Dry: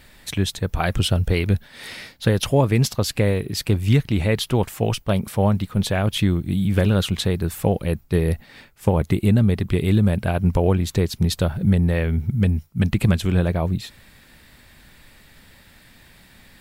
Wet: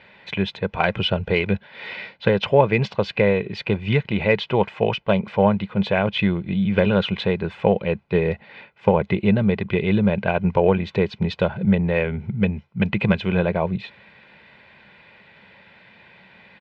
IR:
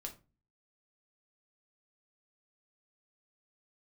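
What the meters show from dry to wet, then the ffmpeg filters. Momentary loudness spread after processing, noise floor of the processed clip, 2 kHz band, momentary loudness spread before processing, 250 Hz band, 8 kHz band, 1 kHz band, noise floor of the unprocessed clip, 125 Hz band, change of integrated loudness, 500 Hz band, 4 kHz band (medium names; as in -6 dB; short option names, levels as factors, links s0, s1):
7 LU, -54 dBFS, +5.0 dB, 6 LU, 0.0 dB, under -25 dB, +4.0 dB, -51 dBFS, -5.0 dB, 0.0 dB, +4.0 dB, -1.0 dB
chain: -af "highpass=180,equalizer=f=200:t=q:w=4:g=8,equalizer=f=290:t=q:w=4:g=-4,equalizer=f=770:t=q:w=4:g=8,equalizer=f=2400:t=q:w=4:g=6,lowpass=f=3300:w=0.5412,lowpass=f=3300:w=1.3066,aeval=exprs='0.75*(cos(1*acos(clip(val(0)/0.75,-1,1)))-cos(1*PI/2))+0.0237*(cos(3*acos(clip(val(0)/0.75,-1,1)))-cos(3*PI/2))':c=same,aecho=1:1:2:0.52,volume=1.19"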